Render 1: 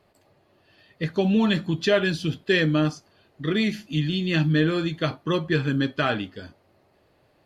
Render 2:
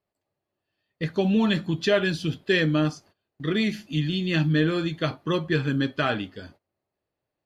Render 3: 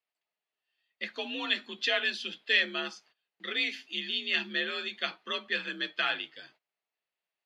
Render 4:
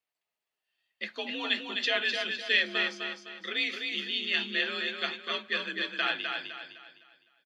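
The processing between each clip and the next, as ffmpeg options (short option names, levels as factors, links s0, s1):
-af "agate=range=0.0891:threshold=0.00355:ratio=16:detection=peak,volume=0.891"
-af "afreqshift=53,bandpass=f=2800:t=q:w=1.3:csg=0,volume=1.33"
-af "aecho=1:1:255|510|765|1020|1275:0.562|0.208|0.077|0.0285|0.0105"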